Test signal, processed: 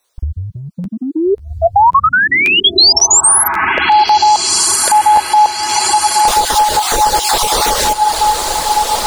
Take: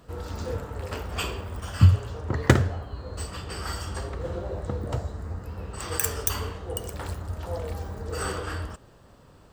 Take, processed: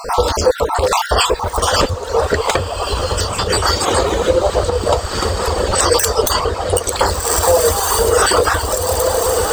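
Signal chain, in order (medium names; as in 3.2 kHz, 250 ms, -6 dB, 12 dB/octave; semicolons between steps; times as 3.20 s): random holes in the spectrogram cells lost 30%; peaking EQ 2.6 kHz -4 dB 0.68 oct; echo that smears into a reverb 1570 ms, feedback 44%, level -8.5 dB; wavefolder -16.5 dBFS; reverb removal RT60 0.8 s; compression 6:1, threshold -38 dBFS; graphic EQ 125/250/500/1000/4000/8000 Hz -12/-5/+8/+6/+8/+6 dB; echo that smears into a reverb 1405 ms, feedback 56%, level -13.5 dB; crackling interface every 0.54 s, samples 512, repeat, from 0.83 s; loudness maximiser +25.5 dB; trim -1 dB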